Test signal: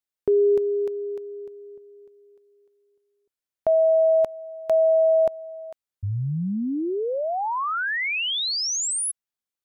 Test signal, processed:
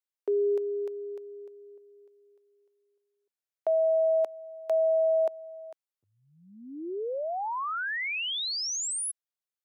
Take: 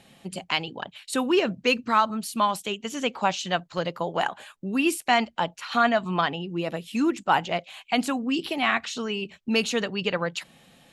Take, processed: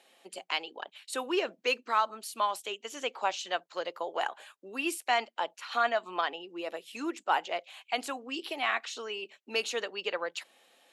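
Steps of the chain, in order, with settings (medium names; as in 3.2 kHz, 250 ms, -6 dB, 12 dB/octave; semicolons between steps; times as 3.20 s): high-pass 360 Hz 24 dB/octave; trim -6 dB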